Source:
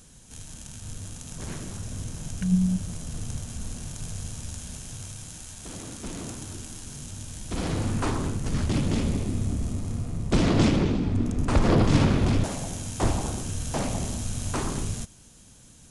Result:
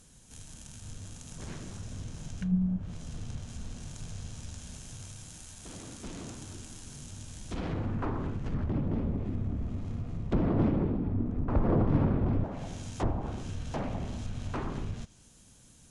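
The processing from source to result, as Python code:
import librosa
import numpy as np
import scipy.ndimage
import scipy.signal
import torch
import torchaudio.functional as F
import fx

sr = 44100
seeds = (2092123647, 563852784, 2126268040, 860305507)

y = fx.env_lowpass_down(x, sr, base_hz=1100.0, full_db=-21.0)
y = F.gain(torch.from_numpy(y), -5.5).numpy()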